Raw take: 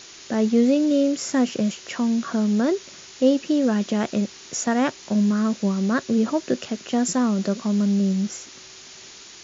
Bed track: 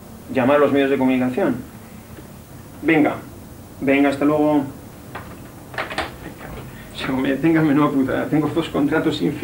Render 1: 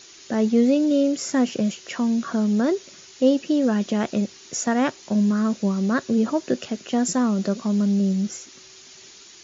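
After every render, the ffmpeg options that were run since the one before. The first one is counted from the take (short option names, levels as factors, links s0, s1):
-af "afftdn=nr=6:nf=-44"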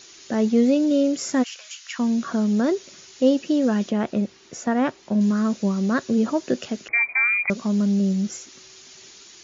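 -filter_complex "[0:a]asplit=3[s0][s1][s2];[s0]afade=t=out:st=1.42:d=0.02[s3];[s1]highpass=f=1200:w=0.5412,highpass=f=1200:w=1.3066,afade=t=in:st=1.42:d=0.02,afade=t=out:st=1.98:d=0.02[s4];[s2]afade=t=in:st=1.98:d=0.02[s5];[s3][s4][s5]amix=inputs=3:normalize=0,asettb=1/sr,asplit=3[s6][s7][s8];[s6]atrim=end=3.894[s9];[s7]atrim=start=3.89:end=5.21,asetpts=PTS-STARTPTS,afade=t=in:d=0.004:c=qsin,afade=t=out:st=1.316:d=0.004:c=qsin,lowpass=f=2100:p=1[s10];[s8]atrim=start=5.206[s11];[s9][s10]acrossfade=d=0.004:c1=hsin:c2=qsin[s12];[s12][s11]acrossfade=d=0.004:c1=qsin:c2=hsin,asettb=1/sr,asplit=3[s13][s14][s15];[s13]atrim=end=6.884[s16];[s14]atrim=start=6.88:end=7.5,asetpts=PTS-STARTPTS,afade=t=in:d=0.004:c=qsin,afade=t=out:st=0.616:d=0.004:c=qsin,lowpass=f=2200:t=q:w=0.5098,lowpass=f=2200:t=q:w=0.6013,lowpass=f=2200:t=q:w=0.9,lowpass=f=2200:t=q:w=2.563,afreqshift=-2600[s17];[s15]atrim=start=7.496[s18];[s16][s17]acrossfade=d=0.004:c1=hsin:c2=qsin[s19];[s19][s18]acrossfade=d=0.004:c1=qsin:c2=hsin"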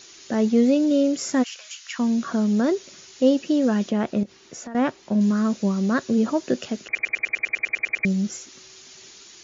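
-filter_complex "[0:a]asettb=1/sr,asplit=3[s0][s1][s2];[s0]atrim=end=4.234[s3];[s1]atrim=start=4.23:end=4.75,asetpts=PTS-STARTPTS,afade=t=in:d=0.004:c=qsin,afade=t=out:st=0.516:d=0.004:c=qsin,acompressor=threshold=0.0224:ratio=6:attack=3.2:release=140:knee=1:detection=peak[s4];[s2]atrim=start=4.746[s5];[s3][s4]acrossfade=d=0.004:c1=hsin:c2=qsin[s6];[s6][s5]acrossfade=d=0.004:c1=qsin:c2=hsin,asplit=13[s7][s8][s9][s10][s11][s12][s13][s14][s15][s16][s17][s18][s19];[s7]atrim=end=6.952[s20];[s8]atrim=start=6.848:end=6.952[s21];[s9]atrim=start=6.848:end=6.952[s22];[s10]atrim=start=6.848:end=6.952[s23];[s11]atrim=start=6.848:end=6.952[s24];[s12]atrim=start=6.848:end=6.952[s25];[s13]atrim=start=6.848:end=6.952[s26];[s14]atrim=start=6.848:end=6.952[s27];[s15]atrim=start=6.848:end=6.952[s28];[s16]atrim=start=6.848:end=6.952[s29];[s17]atrim=start=6.848:end=6.952[s30];[s18]atrim=start=6.848:end=6.952[s31];[s19]atrim=start=8.048[s32];[s20][s21]acrossfade=d=0.004:c1=hsin:c2=hsin[s33];[s33][s22]acrossfade=d=0.004:c1=hsin:c2=hsin[s34];[s34][s23]acrossfade=d=0.004:c1=hsin:c2=hsin[s35];[s35][s24]acrossfade=d=0.004:c1=hsin:c2=hsin[s36];[s36][s25]acrossfade=d=0.004:c1=hsin:c2=hsin[s37];[s37][s26]acrossfade=d=0.004:c1=hsin:c2=hsin[s38];[s38][s27]acrossfade=d=0.004:c1=hsin:c2=hsin[s39];[s39][s28]acrossfade=d=0.004:c1=hsin:c2=hsin[s40];[s40][s29]acrossfade=d=0.004:c1=hsin:c2=hsin[s41];[s41][s30]acrossfade=d=0.004:c1=hsin:c2=hsin[s42];[s42][s31]acrossfade=d=0.004:c1=hsin:c2=hsin[s43];[s43][s32]acrossfade=d=0.004:c1=hsin:c2=hsin"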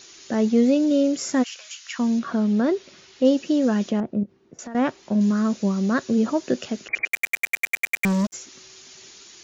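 -filter_complex "[0:a]asettb=1/sr,asplit=3[s0][s1][s2];[s0]atrim=end=2.194[s3];[s1]atrim=start=2.19:end=3.25,asetpts=PTS-STARTPTS,afade=t=in:d=0.004:c=qsin,afade=t=out:st=1.056:d=0.004:c=qsin,lowpass=4200[s4];[s2]atrim=start=3.246[s5];[s3][s4]acrossfade=d=0.004:c1=hsin:c2=qsin[s6];[s6][s5]acrossfade=d=0.004:c1=qsin:c2=hsin,asettb=1/sr,asplit=3[s7][s8][s9];[s7]atrim=end=4.004[s10];[s8]atrim=start=4:end=4.59,asetpts=PTS-STARTPTS,afade=t=in:d=0.004:c=qsin,afade=t=out:st=0.586:d=0.004:c=qsin,bandpass=f=160:t=q:w=0.59[s11];[s9]atrim=start=4.586[s12];[s10][s11]acrossfade=d=0.004:c1=hsin:c2=qsin[s13];[s13][s12]acrossfade=d=0.004:c1=qsin:c2=hsin,asplit=3[s14][s15][s16];[s14]afade=t=out:st=7.06:d=0.02[s17];[s15]acrusher=bits=3:mix=0:aa=0.5,afade=t=in:st=7.06:d=0.02,afade=t=out:st=8.32:d=0.02[s18];[s16]afade=t=in:st=8.32:d=0.02[s19];[s17][s18][s19]amix=inputs=3:normalize=0"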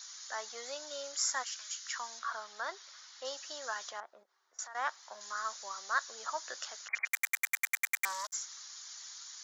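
-af "highpass=f=1000:w=0.5412,highpass=f=1000:w=1.3066,equalizer=f=2600:w=2.4:g=-15"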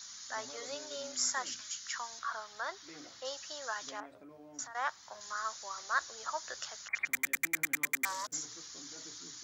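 -filter_complex "[1:a]volume=0.0133[s0];[0:a][s0]amix=inputs=2:normalize=0"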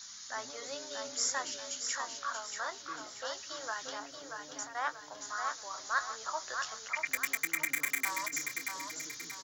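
-filter_complex "[0:a]asplit=2[s0][s1];[s1]adelay=22,volume=0.237[s2];[s0][s2]amix=inputs=2:normalize=0,aecho=1:1:632|1264|1896|2528|3160:0.531|0.218|0.0892|0.0366|0.015"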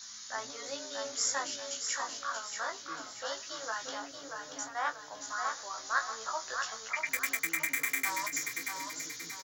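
-filter_complex "[0:a]asplit=2[s0][s1];[s1]adelay=18,volume=0.631[s2];[s0][s2]amix=inputs=2:normalize=0,aecho=1:1:725:0.0891"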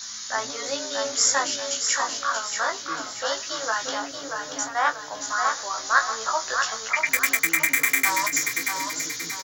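-af "volume=3.55"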